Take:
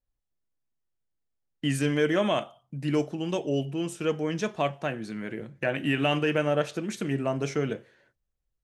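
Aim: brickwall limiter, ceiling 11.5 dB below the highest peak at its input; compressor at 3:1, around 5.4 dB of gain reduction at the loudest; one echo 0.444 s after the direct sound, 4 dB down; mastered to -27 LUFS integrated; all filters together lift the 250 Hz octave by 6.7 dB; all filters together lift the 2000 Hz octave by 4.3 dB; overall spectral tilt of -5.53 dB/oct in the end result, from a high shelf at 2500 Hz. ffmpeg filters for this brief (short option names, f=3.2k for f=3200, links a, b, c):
-af "equalizer=f=250:t=o:g=8.5,equalizer=f=2k:t=o:g=3.5,highshelf=f=2.5k:g=4,acompressor=threshold=-23dB:ratio=3,alimiter=limit=-23dB:level=0:latency=1,aecho=1:1:444:0.631,volume=4.5dB"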